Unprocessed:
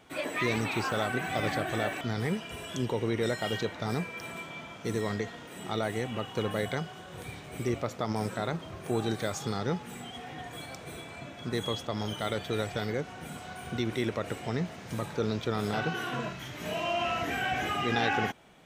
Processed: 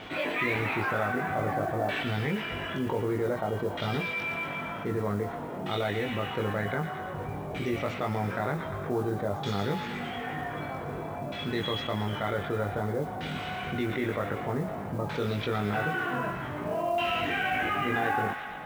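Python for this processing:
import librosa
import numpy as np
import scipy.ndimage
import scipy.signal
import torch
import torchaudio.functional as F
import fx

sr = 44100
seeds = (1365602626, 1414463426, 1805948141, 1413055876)

y = fx.echo_wet_highpass(x, sr, ms=117, feedback_pct=71, hz=2600.0, wet_db=-5.0)
y = fx.filter_lfo_lowpass(y, sr, shape='saw_down', hz=0.53, low_hz=810.0, high_hz=3500.0, q=1.3)
y = fx.doubler(y, sr, ms=20.0, db=-2.5)
y = fx.mod_noise(y, sr, seeds[0], snr_db=28)
y = fx.env_flatten(y, sr, amount_pct=50)
y = y * librosa.db_to_amplitude(-3.5)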